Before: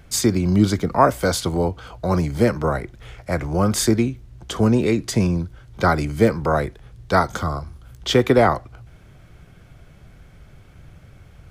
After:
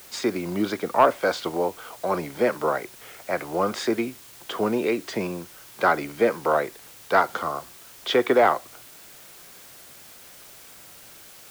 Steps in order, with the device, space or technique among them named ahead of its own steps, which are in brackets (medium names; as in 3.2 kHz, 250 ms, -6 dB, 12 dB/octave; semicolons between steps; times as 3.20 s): tape answering machine (band-pass 390–3200 Hz; saturation -6 dBFS, distortion -21 dB; wow and flutter; white noise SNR 21 dB)